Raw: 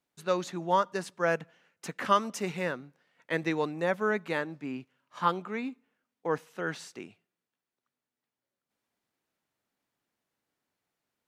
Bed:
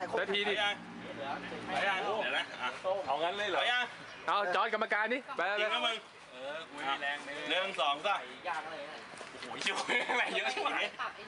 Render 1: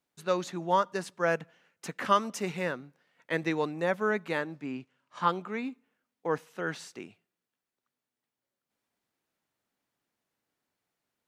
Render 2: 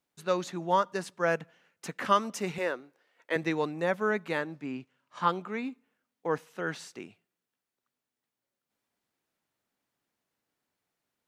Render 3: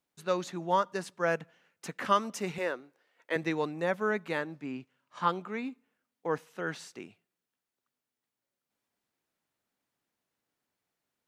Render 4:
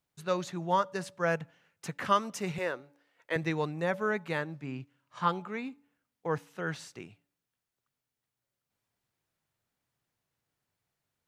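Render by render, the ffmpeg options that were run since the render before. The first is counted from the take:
ffmpeg -i in.wav -filter_complex "[0:a]asettb=1/sr,asplit=3[link_01][link_02][link_03];[link_01]atrim=end=4.644[link_04];[link_02]atrim=start=4.64:end=5.32,asetpts=PTS-STARTPTS,afade=type=in:duration=0.004:curve=qsin,afade=type=out:start_time=0.676:duration=0.004:curve=qsin,lowpass=frequency=9800:width=0.5412,lowpass=frequency=9800:width=1.3066[link_05];[link_03]atrim=start=5.316[link_06];[link_04][link_05]acrossfade=duration=0.004:curve1=hsin:curve2=qsin[link_07];[link_07][link_06]acrossfade=duration=0.004:curve1=qsin:curve2=hsin" out.wav
ffmpeg -i in.wav -filter_complex "[0:a]asettb=1/sr,asplit=3[link_01][link_02][link_03];[link_01]atrim=end=2.584[link_04];[link_02]atrim=start=2.58:end=3.36,asetpts=PTS-STARTPTS,afade=type=in:duration=0.004:curve=qsin,afade=type=out:start_time=0.776:duration=0.004:curve=qsin,lowshelf=frequency=250:width_type=q:width=1.5:gain=-12[link_05];[link_03]atrim=start=3.356[link_06];[link_04][link_05]acrossfade=duration=0.004:curve1=hsin:curve2=qsin[link_07];[link_07][link_06]acrossfade=duration=0.004:curve1=qsin:curve2=hsin" out.wav
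ffmpeg -i in.wav -af "volume=-1.5dB" out.wav
ffmpeg -i in.wav -af "lowshelf=frequency=170:width_type=q:width=1.5:gain=8,bandreject=frequency=285.5:width_type=h:width=4,bandreject=frequency=571:width_type=h:width=4,bandreject=frequency=856.5:width_type=h:width=4" out.wav

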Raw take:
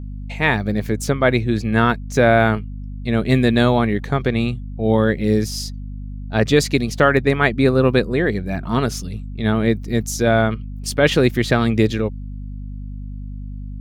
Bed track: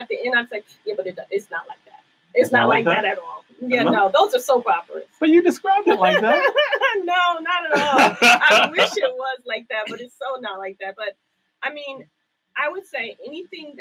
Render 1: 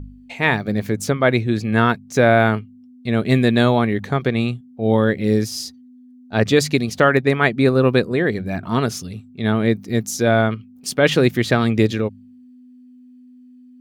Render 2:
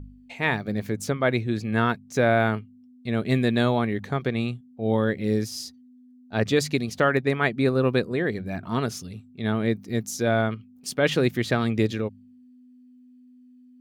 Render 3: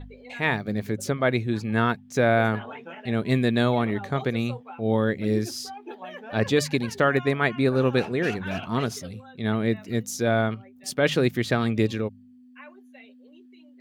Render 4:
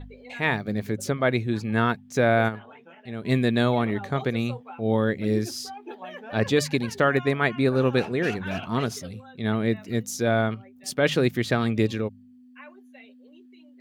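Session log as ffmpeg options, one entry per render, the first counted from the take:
ffmpeg -i in.wav -af "bandreject=frequency=50:width_type=h:width=4,bandreject=frequency=100:width_type=h:width=4,bandreject=frequency=150:width_type=h:width=4,bandreject=frequency=200:width_type=h:width=4" out.wav
ffmpeg -i in.wav -af "volume=-6.5dB" out.wav
ffmpeg -i in.wav -i bed.wav -filter_complex "[1:a]volume=-23.5dB[link_01];[0:a][link_01]amix=inputs=2:normalize=0" out.wav
ffmpeg -i in.wav -filter_complex "[0:a]asplit=3[link_01][link_02][link_03];[link_01]atrim=end=2.6,asetpts=PTS-STARTPTS,afade=type=out:start_time=2.48:duration=0.12:curve=exp:silence=0.354813[link_04];[link_02]atrim=start=2.6:end=3.13,asetpts=PTS-STARTPTS,volume=-9dB[link_05];[link_03]atrim=start=3.13,asetpts=PTS-STARTPTS,afade=type=in:duration=0.12:curve=exp:silence=0.354813[link_06];[link_04][link_05][link_06]concat=n=3:v=0:a=1" out.wav

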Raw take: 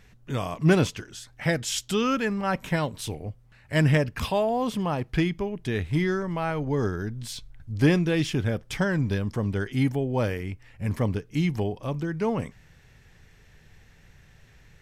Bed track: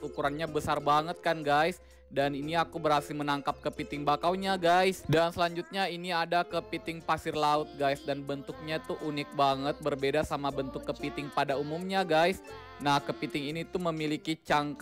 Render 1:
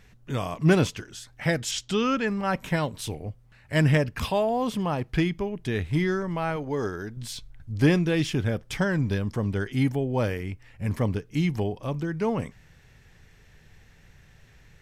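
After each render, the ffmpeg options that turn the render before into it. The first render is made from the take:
ffmpeg -i in.wav -filter_complex "[0:a]asettb=1/sr,asplit=3[link_01][link_02][link_03];[link_01]atrim=end=1.714[link_04];[link_02]atrim=start=1.71:end=2.28,asetpts=PTS-STARTPTS,afade=type=in:duration=0.004:curve=qsin,afade=type=out:start_time=0.566:duration=0.004:curve=qsin,lowpass=6500[link_05];[link_03]atrim=start=2.276[link_06];[link_04][link_05]acrossfade=duration=0.004:curve1=hsin:curve2=qsin[link_07];[link_07][link_06]acrossfade=duration=0.004:curve1=qsin:curve2=hsin,asettb=1/sr,asplit=3[link_08][link_09][link_10];[link_08]atrim=end=6.564[link_11];[link_09]atrim=start=6.56:end=7.17,asetpts=PTS-STARTPTS,afade=type=in:duration=0.004:curve=qsin,afade=type=out:start_time=0.606:duration=0.004:curve=qsin,bass=frequency=250:gain=-8,treble=frequency=4000:gain=1[link_12];[link_10]atrim=start=7.166[link_13];[link_11][link_12]acrossfade=duration=0.004:curve1=hsin:curve2=qsin[link_14];[link_14][link_13]acrossfade=duration=0.004:curve1=qsin:curve2=hsin" out.wav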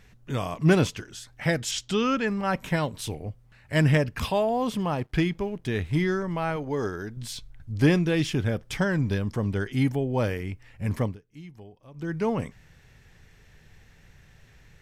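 ffmpeg -i in.wav -filter_complex "[0:a]asettb=1/sr,asplit=3[link_01][link_02][link_03];[link_01]atrim=end=4.784[link_04];[link_02]atrim=start=4.78:end=5.91,asetpts=PTS-STARTPTS,afade=type=in:duration=0.004:curve=qsin,afade=type=out:start_time=1.126:duration=0.004:curve=qsin,aeval=exprs='sgn(val(0))*max(abs(val(0))-0.0015,0)':channel_layout=same[link_05];[link_03]atrim=start=5.906[link_06];[link_04][link_05]acrossfade=duration=0.004:curve1=hsin:curve2=qsin[link_07];[link_07][link_06]acrossfade=duration=0.004:curve1=qsin:curve2=hsin,asplit=3[link_08][link_09][link_10];[link_08]atrim=end=11.17,asetpts=PTS-STARTPTS,afade=type=out:start_time=11.01:duration=0.16:silence=0.112202[link_11];[link_09]atrim=start=11.17:end=11.94,asetpts=PTS-STARTPTS,volume=-19dB[link_12];[link_10]atrim=start=11.94,asetpts=PTS-STARTPTS,afade=type=in:duration=0.16:silence=0.112202[link_13];[link_11][link_12][link_13]concat=n=3:v=0:a=1" out.wav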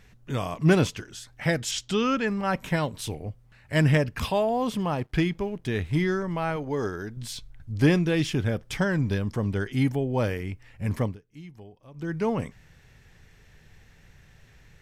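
ffmpeg -i in.wav -af anull out.wav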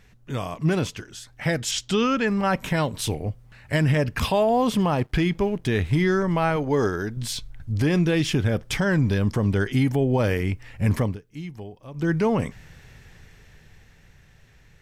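ffmpeg -i in.wav -af "dynaudnorm=framelen=110:gausssize=31:maxgain=9dB,alimiter=limit=-12.5dB:level=0:latency=1:release=100" out.wav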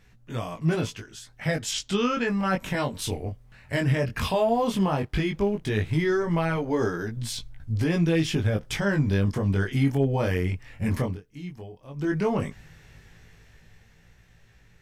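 ffmpeg -i in.wav -af "flanger=delay=17.5:depth=4.9:speed=0.14,asoftclip=type=hard:threshold=-13.5dB" out.wav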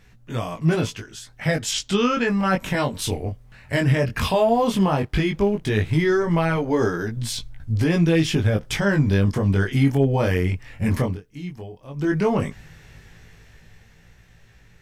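ffmpeg -i in.wav -af "volume=4.5dB" out.wav

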